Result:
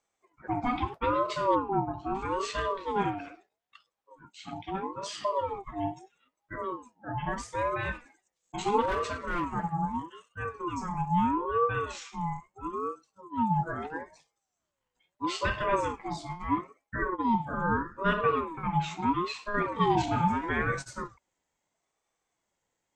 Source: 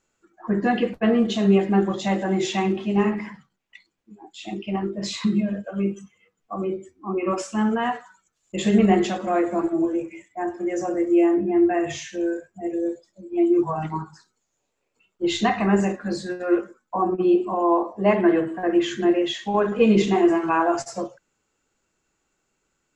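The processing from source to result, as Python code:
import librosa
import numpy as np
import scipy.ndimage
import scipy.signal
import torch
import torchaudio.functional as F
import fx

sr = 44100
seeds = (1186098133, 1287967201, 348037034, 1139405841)

y = fx.moving_average(x, sr, points=31, at=(1.54, 2.14), fade=0.02)
y = fx.clip_hard(y, sr, threshold_db=-18.0, at=(8.81, 9.53))
y = fx.ring_lfo(y, sr, carrier_hz=660.0, swing_pct=25, hz=0.77)
y = y * 10.0 ** (-5.5 / 20.0)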